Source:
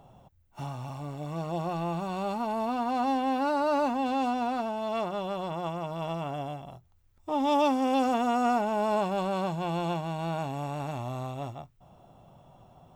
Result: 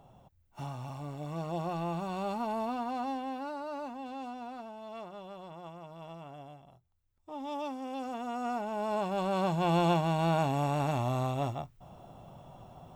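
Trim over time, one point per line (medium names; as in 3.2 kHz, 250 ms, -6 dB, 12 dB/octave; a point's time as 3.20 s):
2.55 s -3 dB
3.66 s -13 dB
7.96 s -13 dB
8.98 s -5 dB
9.74 s +4 dB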